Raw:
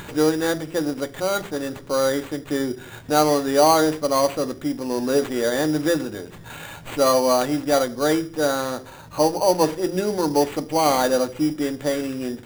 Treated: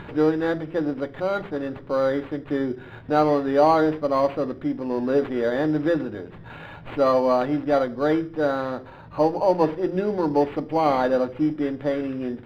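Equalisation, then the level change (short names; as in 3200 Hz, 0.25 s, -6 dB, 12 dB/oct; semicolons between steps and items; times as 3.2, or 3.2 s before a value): air absorption 390 m; 0.0 dB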